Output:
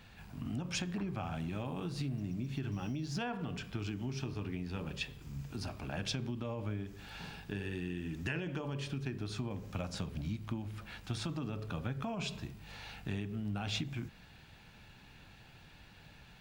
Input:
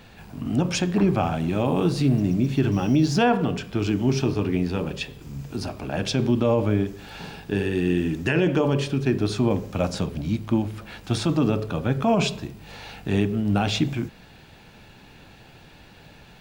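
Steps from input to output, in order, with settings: high shelf 2200 Hz -11 dB; compressor, threshold -25 dBFS, peak gain reduction 9.5 dB; passive tone stack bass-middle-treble 5-5-5; gain +7.5 dB

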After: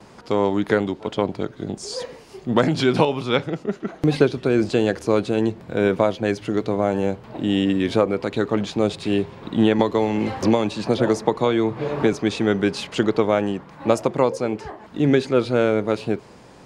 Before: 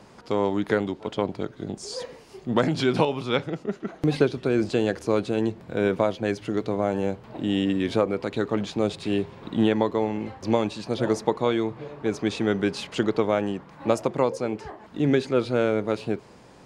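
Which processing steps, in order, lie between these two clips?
gate with hold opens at -44 dBFS; 9.79–12.13 three-band squash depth 100%; gain +4 dB

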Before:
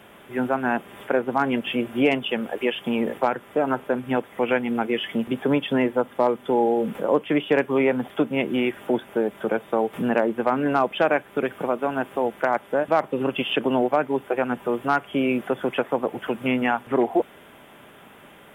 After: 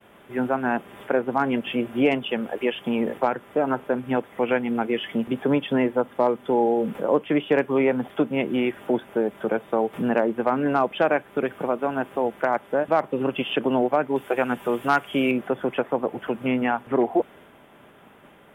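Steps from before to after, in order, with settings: expander -45 dBFS; high shelf 2200 Hz -4.5 dB, from 14.16 s +6 dB, from 15.31 s -7 dB

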